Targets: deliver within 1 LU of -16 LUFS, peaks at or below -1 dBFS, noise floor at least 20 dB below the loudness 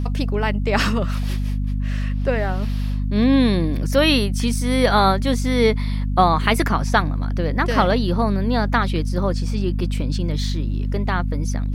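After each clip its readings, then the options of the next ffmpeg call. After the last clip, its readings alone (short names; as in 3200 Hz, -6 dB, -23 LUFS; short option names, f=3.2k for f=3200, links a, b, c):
hum 50 Hz; harmonics up to 250 Hz; hum level -19 dBFS; loudness -20.5 LUFS; peak -1.0 dBFS; loudness target -16.0 LUFS
-> -af "bandreject=f=50:t=h:w=4,bandreject=f=100:t=h:w=4,bandreject=f=150:t=h:w=4,bandreject=f=200:t=h:w=4,bandreject=f=250:t=h:w=4"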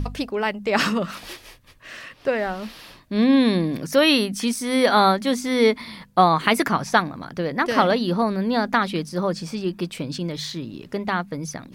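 hum none; loudness -22.0 LUFS; peak -2.0 dBFS; loudness target -16.0 LUFS
-> -af "volume=6dB,alimiter=limit=-1dB:level=0:latency=1"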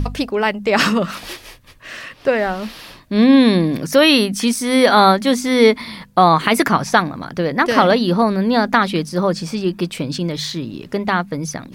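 loudness -16.0 LUFS; peak -1.0 dBFS; noise floor -45 dBFS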